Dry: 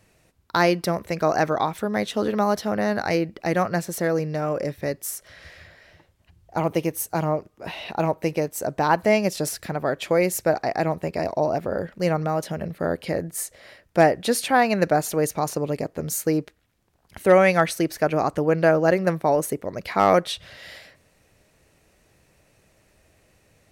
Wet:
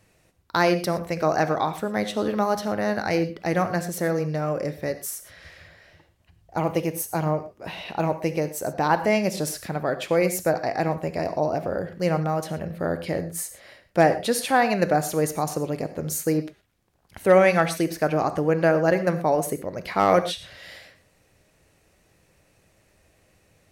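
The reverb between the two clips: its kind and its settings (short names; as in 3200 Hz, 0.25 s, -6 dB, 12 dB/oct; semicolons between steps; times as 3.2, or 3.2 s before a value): non-linear reverb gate 0.14 s flat, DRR 10 dB; gain -1.5 dB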